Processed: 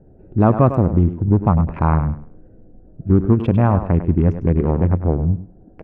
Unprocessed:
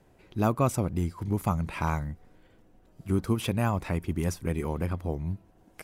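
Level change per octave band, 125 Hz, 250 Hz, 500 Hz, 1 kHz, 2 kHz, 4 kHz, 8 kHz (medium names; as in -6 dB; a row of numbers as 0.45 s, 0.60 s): +13.5 dB, +12.5 dB, +11.5 dB, +9.5 dB, +2.5 dB, no reading, under -25 dB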